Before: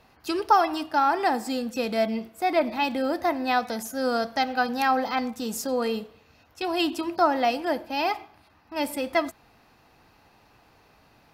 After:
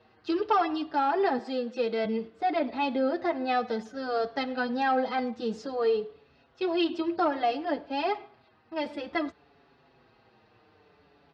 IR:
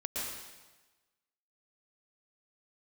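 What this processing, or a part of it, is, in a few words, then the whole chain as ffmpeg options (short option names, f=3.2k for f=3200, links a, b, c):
barber-pole flanger into a guitar amplifier: -filter_complex "[0:a]asettb=1/sr,asplit=3[a][b][c];[a]atrim=end=1.384[d];[b]atrim=start=1.38:end=2.05,asetpts=PTS-STARTPTS,afade=t=in:d=0.004:c=qsin,afade=t=out:st=0.666:d=0.004:c=qsin,highpass=290[e];[c]atrim=start=2.046[f];[d][e]acrossfade=d=0.004:c1=hsin:c2=qsin[g];[g][f]acrossfade=d=0.004:c1=qsin:c2=hsin,asplit=2[h][i];[i]adelay=5.9,afreqshift=-0.58[j];[h][j]amix=inputs=2:normalize=1,asoftclip=type=tanh:threshold=-15.5dB,highpass=77,equalizer=f=420:t=q:w=4:g=8,equalizer=f=940:t=q:w=4:g=-3,equalizer=f=2.4k:t=q:w=4:g=-4,lowpass=f=4.3k:w=0.5412,lowpass=f=4.3k:w=1.3066"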